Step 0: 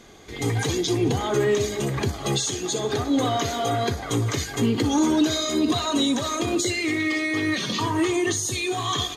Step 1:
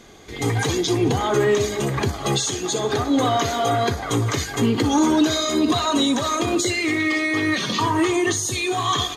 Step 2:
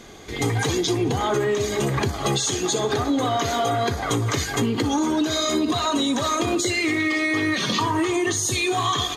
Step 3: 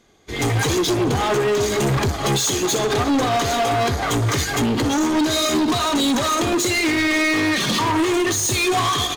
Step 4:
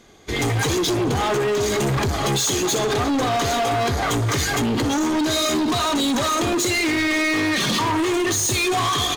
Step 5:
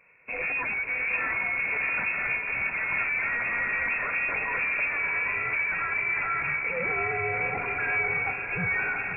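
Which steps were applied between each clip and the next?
dynamic equaliser 1,100 Hz, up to +4 dB, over −38 dBFS, Q 0.89; level +2 dB
downward compressor, threshold −22 dBFS, peak gain reduction 8.5 dB; level +3 dB
in parallel at +0.5 dB: brickwall limiter −18 dBFS, peak gain reduction 8 dB; on the sum: hard clipping −20 dBFS, distortion −9 dB; expander for the loud parts 2.5 to 1, over −37 dBFS; level +4.5 dB
brickwall limiter −25 dBFS, peak gain reduction 9.5 dB; level +6.5 dB
feedback delay with all-pass diffusion 677 ms, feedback 45%, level −5 dB; voice inversion scrambler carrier 2,600 Hz; level −8.5 dB

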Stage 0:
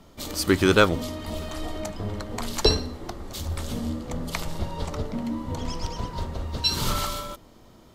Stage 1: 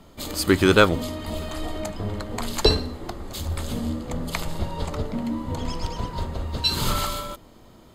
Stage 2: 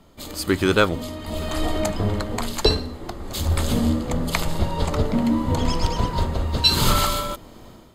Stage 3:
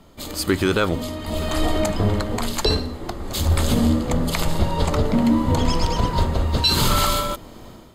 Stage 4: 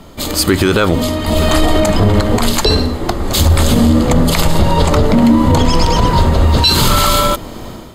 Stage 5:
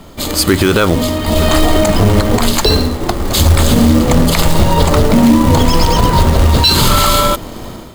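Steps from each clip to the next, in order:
notch filter 5,700 Hz, Q 6.7; level +2 dB
automatic gain control gain up to 11 dB; level −3 dB
boost into a limiter +10.5 dB; level −7.5 dB
boost into a limiter +13.5 dB; level −1 dB
floating-point word with a short mantissa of 2 bits; level +1 dB

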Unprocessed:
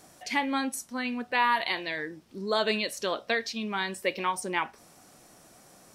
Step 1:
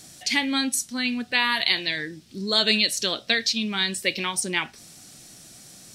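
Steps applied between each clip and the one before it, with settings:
octave-band graphic EQ 125/500/1,000/4,000/8,000 Hz +4/−6/−10/+7/+5 dB
level +6 dB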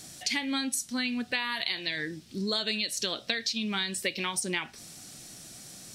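downward compressor 6 to 1, threshold −27 dBFS, peak gain reduction 11 dB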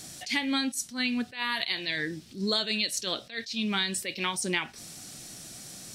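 level that may rise only so fast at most 180 dB per second
level +2.5 dB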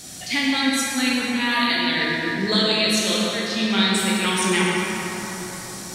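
dense smooth reverb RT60 4.5 s, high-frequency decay 0.45×, DRR −6 dB
level +3.5 dB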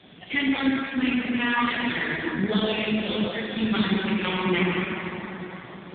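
AMR narrowband 5.15 kbit/s 8,000 Hz

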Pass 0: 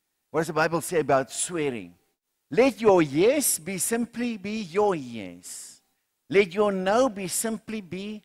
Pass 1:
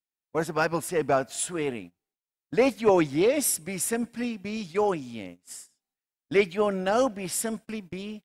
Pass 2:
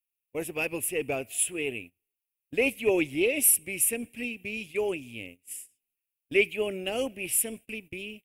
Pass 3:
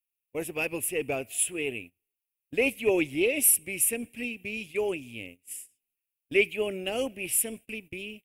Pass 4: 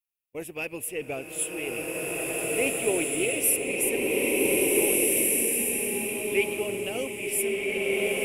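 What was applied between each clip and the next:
noise gate −39 dBFS, range −19 dB; level −2 dB
drawn EQ curve 110 Hz 0 dB, 160 Hz −11 dB, 390 Hz −2 dB, 1,000 Hz −16 dB, 1,500 Hz −17 dB, 2,600 Hz +10 dB, 4,200 Hz −13 dB, 6,400 Hz −8 dB, 11,000 Hz +9 dB
no processing that can be heard
slow-attack reverb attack 1,820 ms, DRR −5.5 dB; level −3 dB

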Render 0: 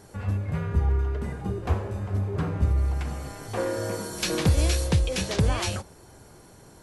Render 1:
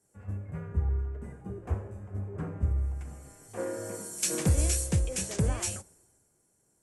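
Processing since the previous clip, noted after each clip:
graphic EQ with 10 bands 1,000 Hz −4 dB, 4,000 Hz −11 dB, 8,000 Hz +12 dB
multiband upward and downward expander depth 70%
level −7 dB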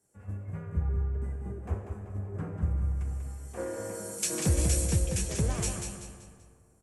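repeating echo 192 ms, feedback 37%, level −6 dB
comb and all-pass reverb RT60 2.4 s, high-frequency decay 0.4×, pre-delay 90 ms, DRR 12 dB
level −1.5 dB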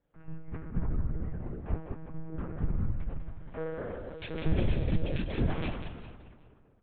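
one-pitch LPC vocoder at 8 kHz 160 Hz

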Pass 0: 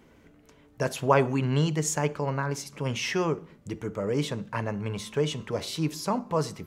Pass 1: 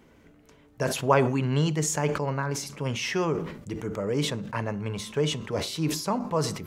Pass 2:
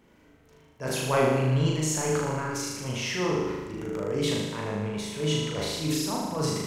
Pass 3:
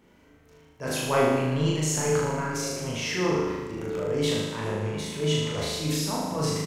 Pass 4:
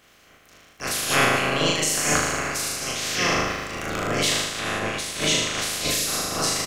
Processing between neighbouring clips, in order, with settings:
level that may fall only so fast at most 72 dB per second
transient designer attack −8 dB, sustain +2 dB; flutter between parallel walls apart 6.6 metres, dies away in 1.2 s; level −4 dB
double-tracking delay 27 ms −6 dB; echo through a band-pass that steps 743 ms, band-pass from 170 Hz, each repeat 1.4 octaves, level −10 dB
ceiling on every frequency bin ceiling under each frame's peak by 24 dB; Butterworth band-reject 910 Hz, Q 6.3; level +3 dB

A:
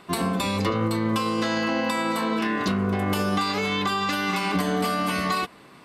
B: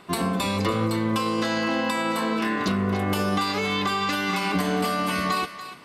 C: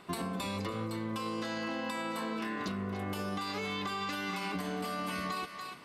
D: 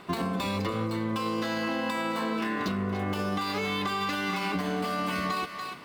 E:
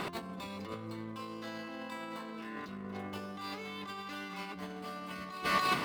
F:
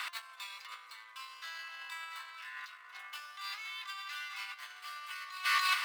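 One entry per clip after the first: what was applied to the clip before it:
feedback echo with a high-pass in the loop 288 ms, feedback 29%, high-pass 900 Hz, level −11 dB
downward compressor, threshold −28 dBFS, peak gain reduction 9 dB; level −5 dB
running median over 5 samples; level +6.5 dB
mains-hum notches 50/100 Hz; compressor whose output falls as the input rises −38 dBFS, ratio −0.5; level +1 dB
high-pass filter 1,300 Hz 24 dB per octave; level +4 dB

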